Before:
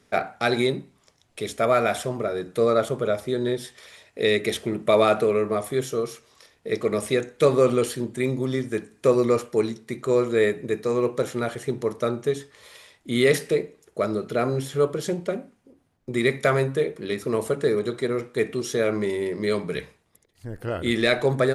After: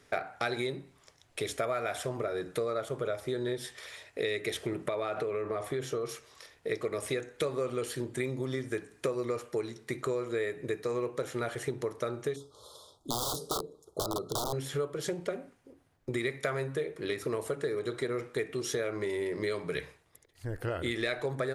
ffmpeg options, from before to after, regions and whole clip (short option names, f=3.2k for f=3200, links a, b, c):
-filter_complex "[0:a]asettb=1/sr,asplit=3[a][b][c];[a]atrim=end=4.884[d];[b]atrim=start=4.88:end=6.09,asetpts=PTS-STARTPTS,afade=t=in:d=0.004:c=qsin,afade=t=out:st=1.206:d=0.004:c=qsin,highshelf=f=6.6k:g=-12,acompressor=threshold=-23dB:ratio=4:attack=3.2:release=140:knee=1:detection=peak[e];[c]atrim=start=6.086[f];[d][e]acrossfade=d=0.004:c1=hsin:c2=qsin[g];[g][f]acrossfade=d=0.004:c1=qsin:c2=hsin,asettb=1/sr,asplit=3[h][i][j];[h]atrim=end=12.364[k];[i]atrim=start=12.36:end=14.53,asetpts=PTS-STARTPTS,afade=t=in:d=0.004:c=qsin,afade=t=out:st=2.166:d=0.004:c=qsin,highshelf=f=2.4k:g=-4,aeval=exprs='(mod(8.91*val(0)+1,2)-1)/8.91':c=same,asuperstop=centerf=2100:order=12:qfactor=1[l];[j]atrim=start=14.526[m];[k][l]acrossfade=d=0.004:c1=hsin:c2=qsin[n];[n][m]acrossfade=d=0.004:c1=qsin:c2=hsin,equalizer=f=210:t=o:w=0.37:g=-11.5,acompressor=threshold=-30dB:ratio=6,equalizer=f=1.7k:t=o:w=0.77:g=2.5"